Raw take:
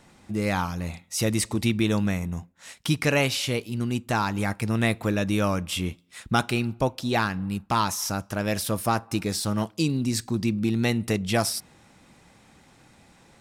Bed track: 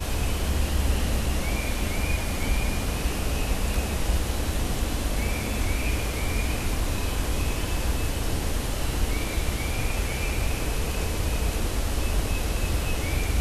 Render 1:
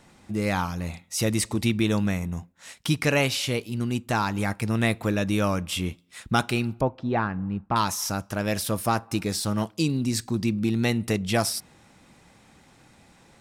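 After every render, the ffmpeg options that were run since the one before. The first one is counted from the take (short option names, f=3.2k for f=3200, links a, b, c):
-filter_complex "[0:a]asettb=1/sr,asplit=3[a][b][c];[a]atrim=end=6.814[d];[b]atrim=start=6.81:end=7.76,asetpts=PTS-STARTPTS,afade=t=in:d=0.004:c=qsin,afade=t=out:st=0.946:d=0.004:c=qsin,lowpass=1.5k[e];[c]atrim=start=7.756[f];[d][e]acrossfade=d=0.004:c1=hsin:c2=qsin[g];[g][f]acrossfade=d=0.004:c1=qsin:c2=hsin"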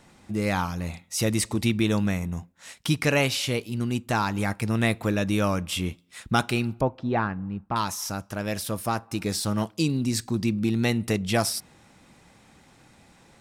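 -filter_complex "[0:a]asplit=3[a][b][c];[a]atrim=end=7.342[d];[b]atrim=start=7.338:end=9.212,asetpts=PTS-STARTPTS,volume=-3dB[e];[c]atrim=start=9.208[f];[d][e]acrossfade=d=0.004:c1=hsin:c2=hsin[g];[g][f]acrossfade=d=0.004:c1=hsin:c2=hsin"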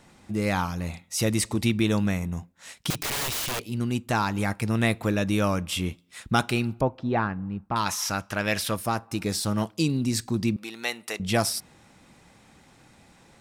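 -filter_complex "[0:a]asettb=1/sr,asplit=3[a][b][c];[a]atrim=end=2.904[d];[b]atrim=start=2.9:end=3.7,asetpts=PTS-STARTPTS,afade=t=in:d=0.004:c=qsin,afade=t=out:st=0.796:d=0.004:c=qsin,aeval=exprs='(mod(15.8*val(0)+1,2)-1)/15.8':c=same[e];[c]atrim=start=3.696[f];[d][e]acrossfade=d=0.004:c1=hsin:c2=qsin[g];[g][f]acrossfade=d=0.004:c1=qsin:c2=hsin,asettb=1/sr,asplit=3[h][i][j];[h]atrim=end=7.864[k];[i]atrim=start=7.86:end=8.76,asetpts=PTS-STARTPTS,afade=t=in:d=0.004:c=qsin,afade=t=out:st=0.896:d=0.004:c=qsin,equalizer=f=2.2k:t=o:w=2.4:g=9.5[l];[j]atrim=start=8.756[m];[k][l]acrossfade=d=0.004:c1=hsin:c2=qsin[n];[n][m]acrossfade=d=0.004:c1=qsin:c2=hsin,asettb=1/sr,asplit=3[o][p][q];[o]atrim=end=10.564[r];[p]atrim=start=10.56:end=11.2,asetpts=PTS-STARTPTS,afade=t=in:d=0.004:c=qsin,afade=t=out:st=0.636:d=0.004:c=qsin,highpass=700[s];[q]atrim=start=11.196[t];[r][s]acrossfade=d=0.004:c1=hsin:c2=qsin[u];[u][t]acrossfade=d=0.004:c1=qsin:c2=hsin"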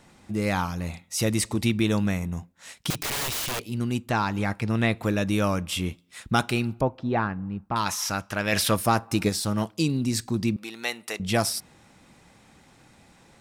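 -filter_complex "[0:a]asettb=1/sr,asplit=3[a][b][c];[a]atrim=end=4.094[d];[b]atrim=start=4.09:end=5.02,asetpts=PTS-STARTPTS,afade=t=in:d=0.004:c=qsin,afade=t=out:st=0.926:d=0.004:c=qsin,acrossover=split=5600[e][f];[f]acompressor=threshold=-52dB:ratio=4:attack=1:release=60[g];[e][g]amix=inputs=2:normalize=0[h];[c]atrim=start=5.016[i];[d][h]acrossfade=d=0.004:c1=hsin:c2=qsin[j];[j][i]acrossfade=d=0.004:c1=qsin:c2=hsin,asplit=3[k][l][m];[k]afade=t=out:st=8.52:d=0.02[n];[l]acontrast=31,afade=t=in:st=8.52:d=0.02,afade=t=out:st=9.28:d=0.02[o];[m]afade=t=in:st=9.28:d=0.02[p];[n][o][p]amix=inputs=3:normalize=0"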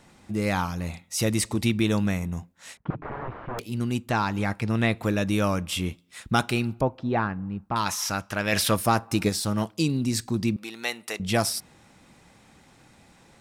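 -filter_complex "[0:a]asettb=1/sr,asplit=3[a][b][c];[a]atrim=end=2.774[d];[b]atrim=start=2.77:end=3.59,asetpts=PTS-STARTPTS,afade=t=in:d=0.004:c=qsin,afade=t=out:st=0.816:d=0.004:c=qsin,lowpass=f=1.4k:w=0.5412,lowpass=f=1.4k:w=1.3066[e];[c]atrim=start=3.586[f];[d][e]acrossfade=d=0.004:c1=hsin:c2=qsin[g];[g][f]acrossfade=d=0.004:c1=qsin:c2=hsin"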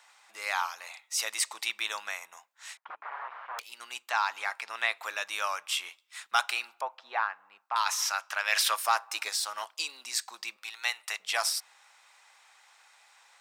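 -af "highpass=f=860:w=0.5412,highpass=f=860:w=1.3066,equalizer=f=11k:w=3.5:g=-8"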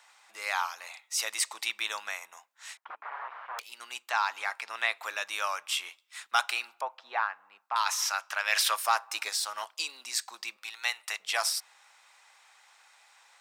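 -af "highpass=f=170:w=0.5412,highpass=f=170:w=1.3066"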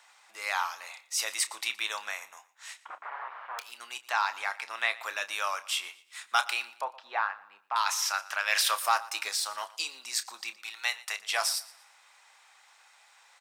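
-filter_complex "[0:a]asplit=2[a][b];[b]adelay=30,volume=-12.5dB[c];[a][c]amix=inputs=2:normalize=0,aecho=1:1:118|236|354:0.1|0.033|0.0109"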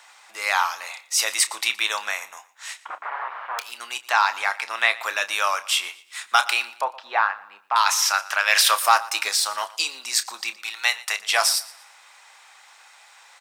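-af "volume=9dB,alimiter=limit=-3dB:level=0:latency=1"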